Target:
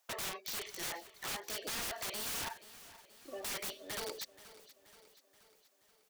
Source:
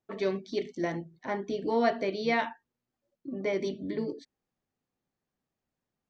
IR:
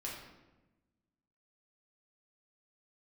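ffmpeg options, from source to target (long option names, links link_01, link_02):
-af "highpass=frequency=630:width=0.5412,highpass=frequency=630:width=1.3066,highshelf=frequency=3700:gain=10.5,acompressor=threshold=-50dB:ratio=2,aeval=exprs='(mod(168*val(0)+1,2)-1)/168':channel_layout=same,aecho=1:1:478|956|1434|1912|2390:0.141|0.0791|0.0443|0.0248|0.0139,volume=10.5dB"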